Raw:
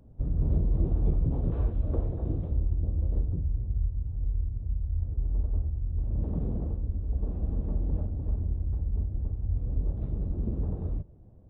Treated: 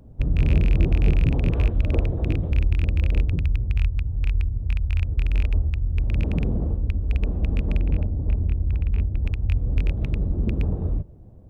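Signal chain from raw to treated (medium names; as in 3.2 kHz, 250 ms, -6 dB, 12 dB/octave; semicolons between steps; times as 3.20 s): rattle on loud lows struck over -23 dBFS, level -29 dBFS; 7.78–9.21 s: low-pass 1 kHz -> 1 kHz 6 dB/octave; trim +7 dB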